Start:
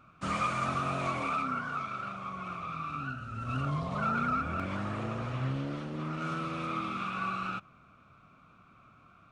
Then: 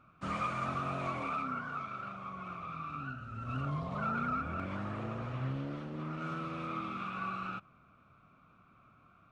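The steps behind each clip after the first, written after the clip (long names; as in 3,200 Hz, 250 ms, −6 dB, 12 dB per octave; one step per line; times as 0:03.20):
high-shelf EQ 4,400 Hz −9.5 dB
level −3.5 dB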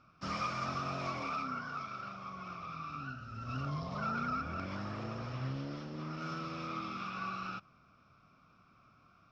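low-pass with resonance 5,300 Hz, resonance Q 11
level −2 dB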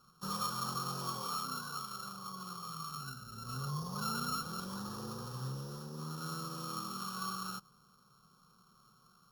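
samples sorted by size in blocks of 8 samples
phaser with its sweep stopped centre 430 Hz, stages 8
level +1 dB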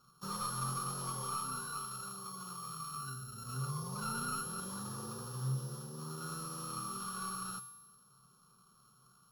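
tuned comb filter 130 Hz, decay 1 s, harmonics odd, mix 80%
slew-rate limiting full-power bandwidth 28 Hz
level +11 dB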